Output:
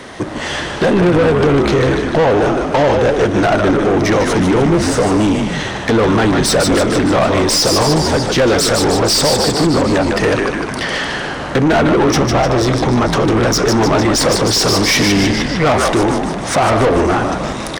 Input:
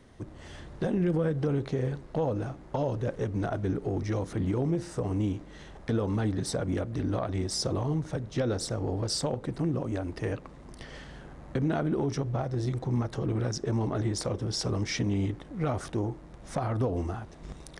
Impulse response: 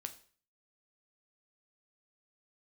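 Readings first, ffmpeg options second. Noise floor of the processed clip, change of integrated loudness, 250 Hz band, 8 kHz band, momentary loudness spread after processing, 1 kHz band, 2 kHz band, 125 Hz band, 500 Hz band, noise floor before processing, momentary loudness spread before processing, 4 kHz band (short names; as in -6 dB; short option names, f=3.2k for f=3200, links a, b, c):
-23 dBFS, +17.5 dB, +17.0 dB, +21.0 dB, 7 LU, +22.5 dB, +25.5 dB, +11.5 dB, +19.5 dB, -48 dBFS, 13 LU, +22.5 dB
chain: -filter_complex "[0:a]asplit=9[a][b][c][d][e][f][g][h][i];[b]adelay=151,afreqshift=-74,volume=-6.5dB[j];[c]adelay=302,afreqshift=-148,volume=-11.2dB[k];[d]adelay=453,afreqshift=-222,volume=-16dB[l];[e]adelay=604,afreqshift=-296,volume=-20.7dB[m];[f]adelay=755,afreqshift=-370,volume=-25.4dB[n];[g]adelay=906,afreqshift=-444,volume=-30.2dB[o];[h]adelay=1057,afreqshift=-518,volume=-34.9dB[p];[i]adelay=1208,afreqshift=-592,volume=-39.6dB[q];[a][j][k][l][m][n][o][p][q]amix=inputs=9:normalize=0,asplit=2[r][s];[1:a]atrim=start_sample=2205[t];[s][t]afir=irnorm=-1:irlink=0,volume=-5.5dB[u];[r][u]amix=inputs=2:normalize=0,asplit=2[v][w];[w]highpass=f=720:p=1,volume=25dB,asoftclip=type=tanh:threshold=-13dB[x];[v][x]amix=inputs=2:normalize=0,lowpass=f=5.6k:p=1,volume=-6dB,volume=8.5dB"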